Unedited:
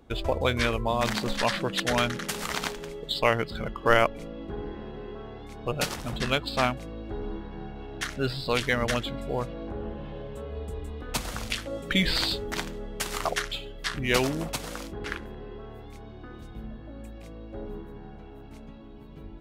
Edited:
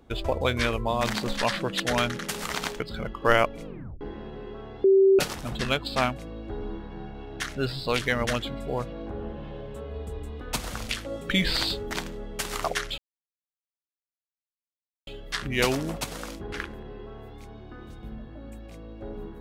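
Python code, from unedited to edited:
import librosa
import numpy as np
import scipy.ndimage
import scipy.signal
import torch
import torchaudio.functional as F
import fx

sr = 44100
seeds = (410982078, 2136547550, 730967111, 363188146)

y = fx.edit(x, sr, fx.cut(start_s=2.8, length_s=0.61),
    fx.tape_stop(start_s=4.26, length_s=0.36),
    fx.bleep(start_s=5.45, length_s=0.35, hz=387.0, db=-14.0),
    fx.insert_silence(at_s=13.59, length_s=2.09), tone=tone)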